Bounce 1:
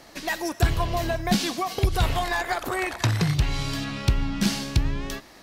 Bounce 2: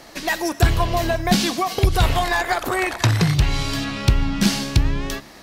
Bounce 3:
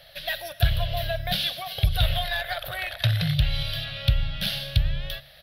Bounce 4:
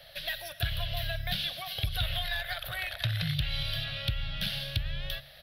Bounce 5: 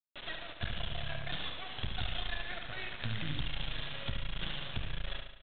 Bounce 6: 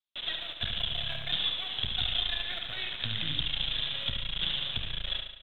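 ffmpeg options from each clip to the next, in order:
-af "bandreject=f=70.75:t=h:w=4,bandreject=f=141.5:t=h:w=4,bandreject=f=212.25:t=h:w=4,bandreject=f=283:t=h:w=4,volume=5.5dB"
-af "firequalizer=gain_entry='entry(150,0);entry(230,-28);entry(380,-26);entry(570,2);entry(970,-19);entry(1500,-2);entry(2200,-4);entry(3400,8);entry(7100,-26);entry(11000,2)':delay=0.05:min_phase=1,volume=-4.5dB"
-filter_complex "[0:a]acrossover=split=170|1100|3600[a][b][c][d];[a]acompressor=threshold=-29dB:ratio=4[e];[b]acompressor=threshold=-45dB:ratio=4[f];[c]acompressor=threshold=-32dB:ratio=4[g];[d]acompressor=threshold=-38dB:ratio=4[h];[e][f][g][h]amix=inputs=4:normalize=0,volume=-1.5dB"
-af "aresample=8000,acrusher=bits=4:dc=4:mix=0:aa=0.000001,aresample=44100,aecho=1:1:71|142|213|284|355|426|497:0.473|0.26|0.143|0.0787|0.0433|0.0238|0.0131,volume=-3dB"
-filter_complex "[0:a]lowpass=f=3.5k:t=q:w=5.4,acrossover=split=430|1000[a][b][c];[b]acrusher=bits=4:mode=log:mix=0:aa=0.000001[d];[a][d][c]amix=inputs=3:normalize=0,volume=-1dB"

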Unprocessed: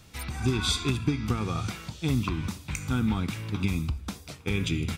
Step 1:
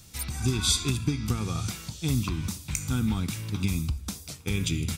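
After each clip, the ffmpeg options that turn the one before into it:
-af "bass=f=250:g=5,treble=f=4k:g=13,volume=-4dB"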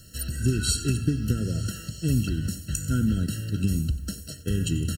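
-af "acrusher=bits=9:mix=0:aa=0.000001,aecho=1:1:93|186|279|372|465:0.141|0.0791|0.0443|0.0248|0.0139,afftfilt=real='re*eq(mod(floor(b*sr/1024/650),2),0)':imag='im*eq(mod(floor(b*sr/1024/650),2),0)':win_size=1024:overlap=0.75,volume=3dB"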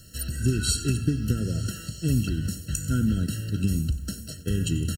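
-af "aecho=1:1:1173:0.0708"

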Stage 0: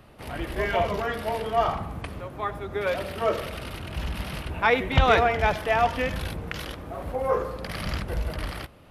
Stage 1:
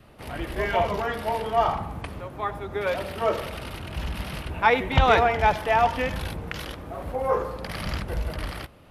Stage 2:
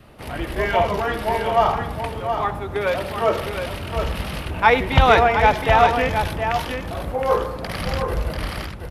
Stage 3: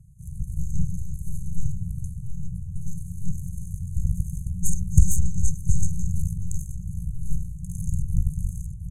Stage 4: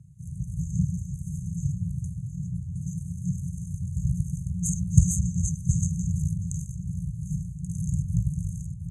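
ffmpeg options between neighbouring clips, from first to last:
-af "adynamicequalizer=threshold=0.01:dfrequency=880:dqfactor=4.9:tfrequency=880:tqfactor=4.9:attack=5:release=100:ratio=0.375:range=3:mode=boostabove:tftype=bell"
-af "aecho=1:1:717:0.447,volume=4.5dB"
-af "lowpass=8.1k,aeval=exprs='0.891*(cos(1*acos(clip(val(0)/0.891,-1,1)))-cos(1*PI/2))+0.224*(cos(8*acos(clip(val(0)/0.891,-1,1)))-cos(8*PI/2))':c=same,afftfilt=real='re*(1-between(b*sr/4096,190,6200))':imag='im*(1-between(b*sr/4096,190,6200))':win_size=4096:overlap=0.75"
-af "highpass=110,lowpass=6.5k,volume=5dB"

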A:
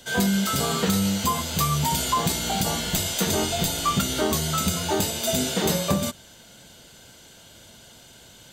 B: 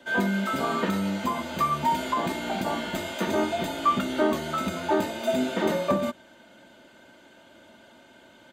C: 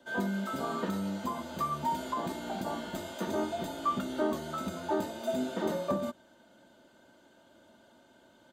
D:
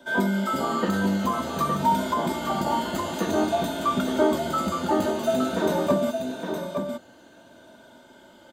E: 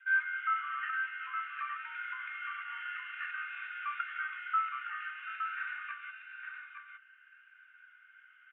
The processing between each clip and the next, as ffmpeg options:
-filter_complex "[0:a]acrossover=split=150 2500:gain=0.112 1 0.112[a][b][c];[a][b][c]amix=inputs=3:normalize=0,aecho=1:1:3.3:0.55"
-af "equalizer=f=2.3k:w=1.7:g=-9,volume=-6.5dB"
-af "afftfilt=real='re*pow(10,7/40*sin(2*PI*(1.6*log(max(b,1)*sr/1024/100)/log(2)-(-0.51)*(pts-256)/sr)))':imag='im*pow(10,7/40*sin(2*PI*(1.6*log(max(b,1)*sr/1024/100)/log(2)-(-0.51)*(pts-256)/sr)))':win_size=1024:overlap=0.75,aecho=1:1:730|864:0.119|0.473,volume=8dB"
-af "asuperpass=centerf=1900:order=12:qfactor=1.3"

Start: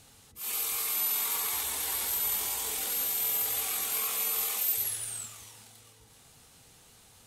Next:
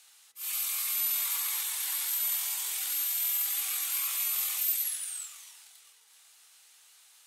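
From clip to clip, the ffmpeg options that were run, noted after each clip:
-af "highpass=1.4k"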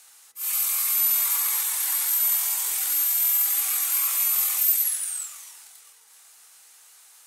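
-af "equalizer=f=3.3k:t=o:w=1.3:g=-7.5,volume=8.5dB"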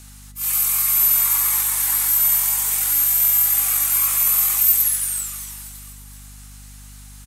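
-filter_complex "[0:a]aeval=exprs='val(0)+0.00398*(sin(2*PI*50*n/s)+sin(2*PI*2*50*n/s)/2+sin(2*PI*3*50*n/s)/3+sin(2*PI*4*50*n/s)/4+sin(2*PI*5*50*n/s)/5)':c=same,aecho=1:1:241|482|723|964|1205|1446:0.2|0.114|0.0648|0.037|0.0211|0.012,acrossover=split=580|2600|6000[a][b][c][d];[c]alimiter=level_in=13dB:limit=-24dB:level=0:latency=1,volume=-13dB[e];[a][b][e][d]amix=inputs=4:normalize=0,volume=5.5dB"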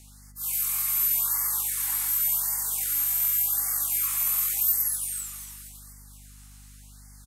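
-af "afftfilt=real='re*(1-between(b*sr/1024,410*pow(3200/410,0.5+0.5*sin(2*PI*0.88*pts/sr))/1.41,410*pow(3200/410,0.5+0.5*sin(2*PI*0.88*pts/sr))*1.41))':imag='im*(1-between(b*sr/1024,410*pow(3200/410,0.5+0.5*sin(2*PI*0.88*pts/sr))/1.41,410*pow(3200/410,0.5+0.5*sin(2*PI*0.88*pts/sr))*1.41))':win_size=1024:overlap=0.75,volume=-8dB"

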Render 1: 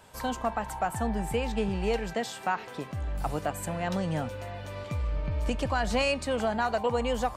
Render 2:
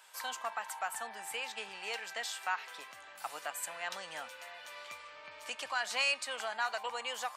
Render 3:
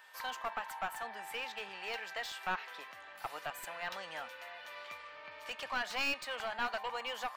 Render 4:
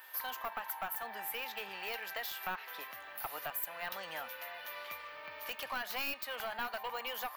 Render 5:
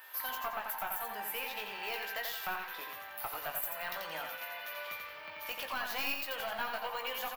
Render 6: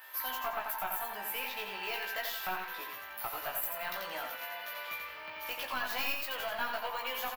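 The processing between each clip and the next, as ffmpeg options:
-af "highpass=1.3k"
-af "aeval=exprs='clip(val(0),-1,0.0178)':c=same,equalizer=f=8.3k:t=o:w=1.2:g=-12,aeval=exprs='val(0)+0.001*sin(2*PI*1800*n/s)':c=same,volume=1dB"
-af "aexciter=amount=11.4:drive=2.8:freq=11k,acompressor=threshold=-41dB:ratio=2,volume=2.5dB"
-filter_complex "[0:a]asplit=2[a][b];[b]adelay=19,volume=-7dB[c];[a][c]amix=inputs=2:normalize=0,asplit=2[d][e];[e]aecho=0:1:87|174|261|348:0.562|0.202|0.0729|0.0262[f];[d][f]amix=inputs=2:normalize=0"
-filter_complex "[0:a]asplit=2[a][b];[b]adelay=16,volume=-4dB[c];[a][c]amix=inputs=2:normalize=0"

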